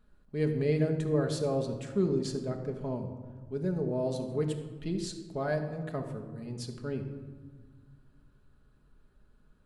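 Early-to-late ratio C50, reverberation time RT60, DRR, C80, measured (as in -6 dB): 8.0 dB, 1.5 s, 3.5 dB, 9.5 dB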